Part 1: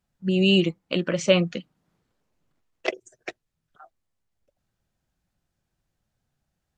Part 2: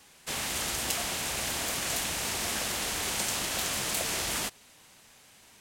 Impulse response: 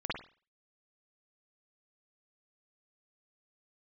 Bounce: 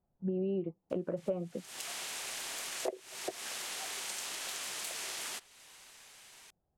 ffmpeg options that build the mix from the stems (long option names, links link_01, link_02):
-filter_complex "[0:a]lowpass=frequency=760:width_type=q:width=1.6,volume=-2.5dB,asplit=2[link_01][link_02];[1:a]highpass=frequency=900:poles=1,equalizer=frequency=15000:width=2.3:gain=-12,acompressor=threshold=-47dB:ratio=2,adelay=900,volume=1.5dB,asplit=2[link_03][link_04];[link_04]volume=-24dB[link_05];[link_02]apad=whole_len=286808[link_06];[link_03][link_06]sidechaincompress=threshold=-38dB:ratio=6:attack=16:release=305[link_07];[2:a]atrim=start_sample=2205[link_08];[link_05][link_08]afir=irnorm=-1:irlink=0[link_09];[link_01][link_07][link_09]amix=inputs=3:normalize=0,equalizer=frequency=390:width=6:gain=5,acompressor=threshold=-33dB:ratio=5"